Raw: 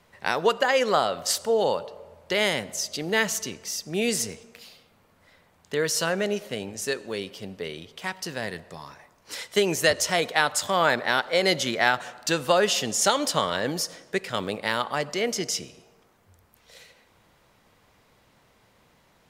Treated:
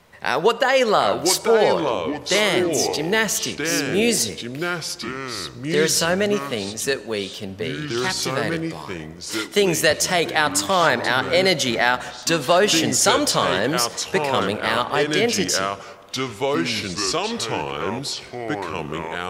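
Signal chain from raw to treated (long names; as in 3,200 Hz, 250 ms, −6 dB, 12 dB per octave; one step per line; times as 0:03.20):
in parallel at 0 dB: brickwall limiter −14.5 dBFS, peak gain reduction 10.5 dB
on the sum: delay with pitch and tempo change per echo 679 ms, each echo −4 semitones, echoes 2, each echo −6 dB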